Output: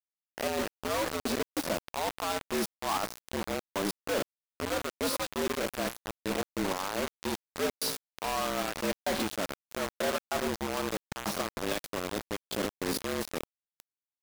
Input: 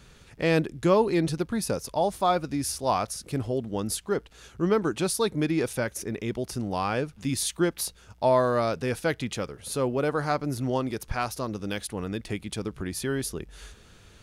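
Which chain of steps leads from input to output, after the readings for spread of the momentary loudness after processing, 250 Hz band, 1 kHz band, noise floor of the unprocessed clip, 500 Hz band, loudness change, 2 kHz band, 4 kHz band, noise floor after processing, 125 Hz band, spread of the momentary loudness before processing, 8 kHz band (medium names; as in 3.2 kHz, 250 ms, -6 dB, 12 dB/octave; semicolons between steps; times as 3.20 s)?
5 LU, -7.0 dB, -5.0 dB, -54 dBFS, -6.5 dB, -5.5 dB, -1.5 dB, +0.5 dB, under -85 dBFS, -13.5 dB, 9 LU, -4.0 dB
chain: reverse spectral sustain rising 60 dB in 0.34 s; treble shelf 3 kHz +6.5 dB; feedback comb 60 Hz, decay 1 s, harmonics all, mix 60%; trance gate "x.x....." 96 bpm -12 dB; gate with hold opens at -46 dBFS; graphic EQ 125/250/500/1000/4000/8000 Hz +10/+6/+8/+10/+8/-12 dB; reverse; compression 5:1, threshold -39 dBFS, peak gain reduction 22 dB; reverse; frequency shift +88 Hz; companded quantiser 2-bit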